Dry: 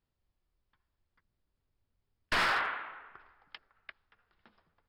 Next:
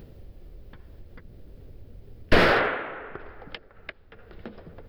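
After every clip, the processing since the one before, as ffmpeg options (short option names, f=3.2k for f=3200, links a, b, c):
-filter_complex "[0:a]equalizer=f=500:t=o:w=1:g=8,equalizer=f=1k:t=o:w=1:g=-9,equalizer=f=8k:t=o:w=1:g=-10,asplit=2[a][b];[b]acompressor=mode=upward:threshold=-39dB:ratio=2.5,volume=-0.5dB[c];[a][c]amix=inputs=2:normalize=0,tiltshelf=f=750:g=6,volume=8dB"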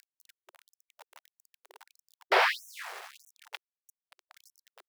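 -af "aeval=exprs='val(0)*sin(2*PI*300*n/s)':c=same,aeval=exprs='val(0)*gte(abs(val(0)),0.0126)':c=same,afftfilt=real='re*gte(b*sr/1024,350*pow(5700/350,0.5+0.5*sin(2*PI*1.6*pts/sr)))':imag='im*gte(b*sr/1024,350*pow(5700/350,0.5+0.5*sin(2*PI*1.6*pts/sr)))':win_size=1024:overlap=0.75"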